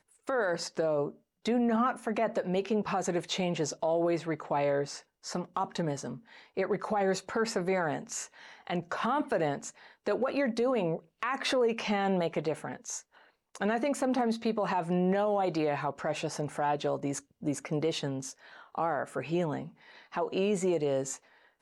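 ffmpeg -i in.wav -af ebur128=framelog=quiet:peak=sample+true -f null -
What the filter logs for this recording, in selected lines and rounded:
Integrated loudness:
  I:         -31.4 LUFS
  Threshold: -41.8 LUFS
Loudness range:
  LRA:         2.9 LU
  Threshold: -51.8 LUFS
  LRA low:   -33.3 LUFS
  LRA high:  -30.4 LUFS
Sample peak:
  Peak:      -19.8 dBFS
True peak:
  Peak:      -19.8 dBFS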